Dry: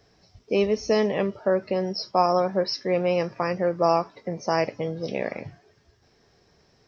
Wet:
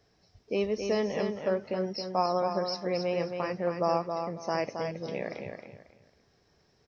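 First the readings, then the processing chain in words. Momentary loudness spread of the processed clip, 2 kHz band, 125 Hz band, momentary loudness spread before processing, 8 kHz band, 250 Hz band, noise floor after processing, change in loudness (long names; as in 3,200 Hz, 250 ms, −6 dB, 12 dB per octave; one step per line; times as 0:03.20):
8 LU, −6.0 dB, −6.0 dB, 9 LU, can't be measured, −6.0 dB, −68 dBFS, −6.0 dB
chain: repeating echo 271 ms, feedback 25%, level −6 dB
level −7 dB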